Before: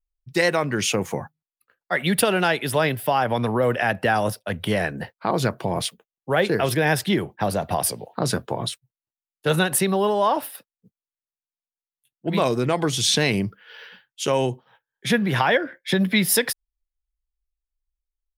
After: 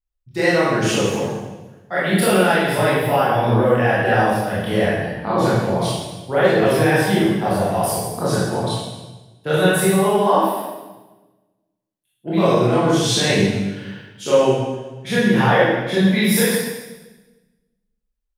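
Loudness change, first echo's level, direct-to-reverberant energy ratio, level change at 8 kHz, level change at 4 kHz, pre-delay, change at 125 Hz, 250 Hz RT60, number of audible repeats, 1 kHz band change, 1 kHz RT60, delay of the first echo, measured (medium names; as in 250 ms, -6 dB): +4.5 dB, no echo, -9.5 dB, +0.5 dB, +1.5 dB, 22 ms, +6.0 dB, 1.4 s, no echo, +4.5 dB, 1.1 s, no echo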